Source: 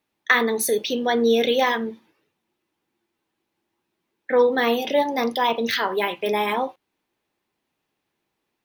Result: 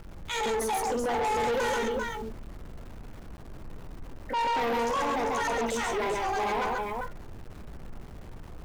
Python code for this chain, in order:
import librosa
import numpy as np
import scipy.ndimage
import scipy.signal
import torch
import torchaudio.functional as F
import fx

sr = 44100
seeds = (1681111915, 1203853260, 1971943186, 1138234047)

p1 = fx.pitch_trill(x, sr, semitones=11.0, every_ms=228)
p2 = scipy.signal.sosfilt(scipy.signal.butter(2, 230.0, 'highpass', fs=sr, output='sos'), p1)
p3 = fx.high_shelf(p2, sr, hz=9700.0, db=-6.5)
p4 = fx.notch(p3, sr, hz=1700.0, q=6.6)
p5 = fx.dmg_noise_colour(p4, sr, seeds[0], colour='brown', level_db=-41.0)
p6 = p5 + fx.echo_multitap(p5, sr, ms=(52, 66, 137, 394), db=(-12.0, -18.5, -3.5, -7.0), dry=0)
p7 = fx.env_lowpass(p6, sr, base_hz=2700.0, full_db=-14.5)
p8 = fx.peak_eq(p7, sr, hz=3700.0, db=-13.0, octaves=1.2)
p9 = np.where(np.abs(p8) >= 10.0 ** (-46.0 / 20.0), p8, 0.0)
p10 = fx.transient(p9, sr, attack_db=-5, sustain_db=1)
y = 10.0 ** (-25.0 / 20.0) * np.tanh(p10 / 10.0 ** (-25.0 / 20.0))